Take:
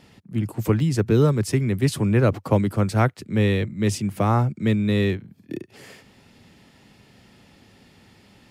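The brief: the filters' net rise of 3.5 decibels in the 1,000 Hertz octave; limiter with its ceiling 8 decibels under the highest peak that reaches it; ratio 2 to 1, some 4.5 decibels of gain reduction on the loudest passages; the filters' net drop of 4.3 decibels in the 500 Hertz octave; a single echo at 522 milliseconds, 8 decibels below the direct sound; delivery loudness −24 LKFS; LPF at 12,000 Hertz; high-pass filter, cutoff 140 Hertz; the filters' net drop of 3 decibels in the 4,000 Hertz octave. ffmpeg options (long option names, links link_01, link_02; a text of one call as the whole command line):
ffmpeg -i in.wav -af "highpass=140,lowpass=12000,equalizer=frequency=500:width_type=o:gain=-7,equalizer=frequency=1000:width_type=o:gain=7,equalizer=frequency=4000:width_type=o:gain=-4,acompressor=threshold=-23dB:ratio=2,alimiter=limit=-18dB:level=0:latency=1,aecho=1:1:522:0.398,volume=4.5dB" out.wav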